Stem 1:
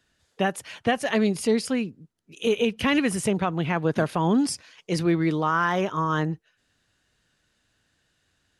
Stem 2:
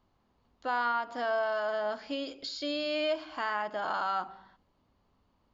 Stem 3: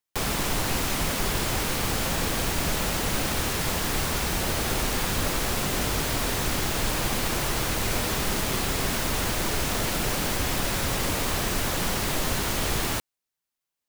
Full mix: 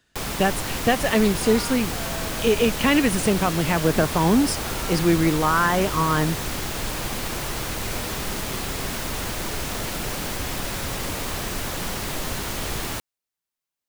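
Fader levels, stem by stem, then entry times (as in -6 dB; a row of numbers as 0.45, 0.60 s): +3.0, -8.0, -2.0 dB; 0.00, 0.75, 0.00 s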